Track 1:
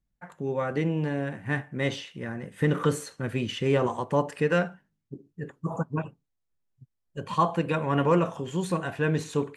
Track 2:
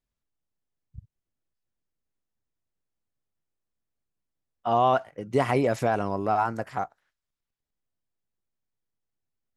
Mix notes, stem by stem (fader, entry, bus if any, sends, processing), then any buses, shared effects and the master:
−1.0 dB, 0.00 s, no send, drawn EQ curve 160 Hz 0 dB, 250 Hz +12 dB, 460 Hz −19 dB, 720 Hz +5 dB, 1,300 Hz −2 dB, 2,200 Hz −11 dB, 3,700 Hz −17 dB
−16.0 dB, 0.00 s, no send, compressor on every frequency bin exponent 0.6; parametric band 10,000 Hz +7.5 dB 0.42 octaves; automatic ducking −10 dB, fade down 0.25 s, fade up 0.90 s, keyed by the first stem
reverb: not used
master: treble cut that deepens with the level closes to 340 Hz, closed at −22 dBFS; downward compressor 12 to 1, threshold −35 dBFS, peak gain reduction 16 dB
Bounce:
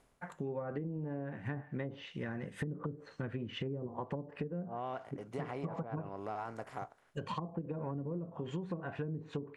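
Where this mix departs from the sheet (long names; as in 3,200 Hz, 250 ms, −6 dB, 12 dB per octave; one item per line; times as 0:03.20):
stem 1: missing drawn EQ curve 160 Hz 0 dB, 250 Hz +12 dB, 460 Hz −19 dB, 720 Hz +5 dB, 1,300 Hz −2 dB, 2,200 Hz −11 dB, 3,700 Hz −17 dB
stem 2 −16.0 dB → −7.0 dB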